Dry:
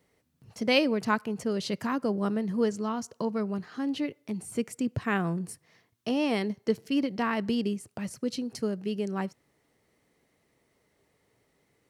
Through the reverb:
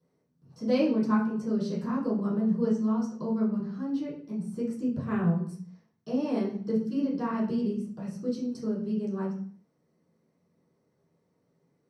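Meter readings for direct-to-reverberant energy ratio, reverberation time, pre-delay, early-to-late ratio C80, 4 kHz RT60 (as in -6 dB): -12.0 dB, 0.55 s, 3 ms, 9.5 dB, 0.50 s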